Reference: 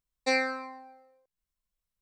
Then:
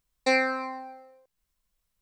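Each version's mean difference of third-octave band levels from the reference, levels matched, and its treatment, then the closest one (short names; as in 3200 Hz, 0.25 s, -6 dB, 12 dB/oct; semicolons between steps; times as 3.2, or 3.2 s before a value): 2.0 dB: dynamic EQ 6000 Hz, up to -5 dB, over -44 dBFS, Q 0.9; in parallel at +1.5 dB: compressor, threshold -38 dBFS, peak gain reduction 14.5 dB; on the sum: gain +2 dB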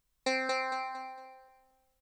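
8.5 dB: compressor 3:1, threshold -42 dBFS, peak gain reduction 14.5 dB; on a send: feedback echo 0.228 s, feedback 34%, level -3 dB; on the sum: gain +8.5 dB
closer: first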